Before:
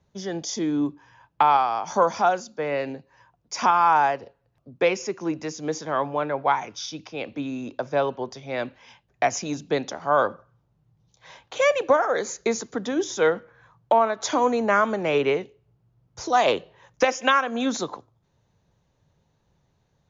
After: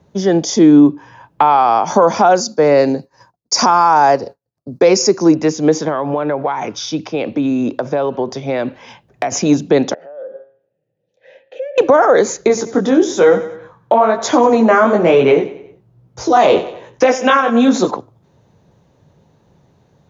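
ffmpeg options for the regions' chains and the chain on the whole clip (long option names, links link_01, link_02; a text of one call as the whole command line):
ffmpeg -i in.wav -filter_complex "[0:a]asettb=1/sr,asplit=3[link_01][link_02][link_03];[link_01]atrim=end=2.354[link_04];[link_02]atrim=start=2.35:end=5.35,asetpts=PTS-STARTPTS,afade=type=in:duration=0.004:curve=qsin,afade=type=out:start_time=2.996:duration=0.004:curve=qsin,agate=range=-33dB:threshold=-52dB:ratio=3:release=100:detection=peak,highshelf=frequency=3800:width_type=q:width=3:gain=6.5[link_05];[link_03]atrim=start=5.346[link_06];[link_04][link_05]acrossfade=duration=0.004:curve1=hsin:curve2=qsin[link_07];[link_07][link_06]acrossfade=duration=0.004:curve1=qsin:curve2=hsin,asettb=1/sr,asplit=3[link_08][link_09][link_10];[link_08]atrim=end=5.884[link_11];[link_09]atrim=start=5.88:end=9.32,asetpts=PTS-STARTPTS,afade=type=in:duration=0.004:curve=qsin,afade=type=out:start_time=3.436:duration=0.004:curve=qsin,acompressor=threshold=-30dB:ratio=5:attack=3.2:release=140:knee=1:detection=peak,volume=21dB,asoftclip=hard,volume=-21dB[link_12];[link_10]atrim=start=9.316[link_13];[link_11][link_12]acrossfade=duration=0.004:curve1=hsin:curve2=qsin[link_14];[link_14][link_13]acrossfade=duration=0.004:curve1=qsin:curve2=hsin,asettb=1/sr,asplit=3[link_15][link_16][link_17];[link_15]atrim=end=9.944[link_18];[link_16]atrim=start=9.94:end=11.78,asetpts=PTS-STARTPTS,afade=type=in:duration=0.004:curve=qsin,afade=type=out:start_time=1.836:duration=0.004:curve=qsin,bandreject=frequency=135.5:width_type=h:width=4,bandreject=frequency=271:width_type=h:width=4,bandreject=frequency=406.5:width_type=h:width=4,bandreject=frequency=542:width_type=h:width=4,bandreject=frequency=677.5:width_type=h:width=4,bandreject=frequency=813:width_type=h:width=4,bandreject=frequency=948.5:width_type=h:width=4,bandreject=frequency=1084:width_type=h:width=4,bandreject=frequency=1219.5:width_type=h:width=4,bandreject=frequency=1355:width_type=h:width=4,bandreject=frequency=1490.5:width_type=h:width=4,bandreject=frequency=1626:width_type=h:width=4,bandreject=frequency=1761.5:width_type=h:width=4,bandreject=frequency=1897:width_type=h:width=4,bandreject=frequency=2032.5:width_type=h:width=4,bandreject=frequency=2168:width_type=h:width=4,bandreject=frequency=2303.5:width_type=h:width=4,bandreject=frequency=2439:width_type=h:width=4,bandreject=frequency=2574.5:width_type=h:width=4,bandreject=frequency=2710:width_type=h:width=4,bandreject=frequency=2845.5:width_type=h:width=4,bandreject=frequency=2981:width_type=h:width=4,bandreject=frequency=3116.5:width_type=h:width=4,bandreject=frequency=3252:width_type=h:width=4,bandreject=frequency=3387.5:width_type=h:width=4,bandreject=frequency=3523:width_type=h:width=4,bandreject=frequency=3658.5:width_type=h:width=4,bandreject=frequency=3794:width_type=h:width=4,bandreject=frequency=3929.5:width_type=h:width=4,bandreject=frequency=4065:width_type=h:width=4,bandreject=frequency=4200.5:width_type=h:width=4,bandreject=frequency=4336:width_type=h:width=4,bandreject=frequency=4471.5:width_type=h:width=4,acompressor=threshold=-35dB:ratio=10:attack=3.2:release=140:knee=1:detection=peak,asplit=3[link_19][link_20][link_21];[link_19]bandpass=frequency=530:width_type=q:width=8,volume=0dB[link_22];[link_20]bandpass=frequency=1840:width_type=q:width=8,volume=-6dB[link_23];[link_21]bandpass=frequency=2480:width_type=q:width=8,volume=-9dB[link_24];[link_22][link_23][link_24]amix=inputs=3:normalize=0[link_25];[link_17]atrim=start=11.776[link_26];[link_18][link_25]acrossfade=duration=0.004:curve1=hsin:curve2=qsin[link_27];[link_27][link_26]acrossfade=duration=0.004:curve1=qsin:curve2=hsin,asettb=1/sr,asplit=3[link_28][link_29][link_30];[link_28]atrim=end=12.484[link_31];[link_29]atrim=start=12.48:end=17.91,asetpts=PTS-STARTPTS,afade=type=in:duration=0.004:curve=qsin,afade=type=out:start_time=5.426:duration=0.004:curve=qsin,flanger=delay=15.5:depth=7:speed=1.1,aecho=1:1:92|184|276|368:0.158|0.0745|0.035|0.0165,atrim=end_sample=239463[link_32];[link_30]atrim=start=17.906[link_33];[link_31][link_32]acrossfade=duration=0.004:curve1=hsin:curve2=qsin[link_34];[link_34][link_33]acrossfade=duration=0.004:curve1=qsin:curve2=hsin,highpass=frequency=310:poles=1,tiltshelf=frequency=680:gain=7,alimiter=level_in=17.5dB:limit=-1dB:release=50:level=0:latency=1,volume=-1dB" out.wav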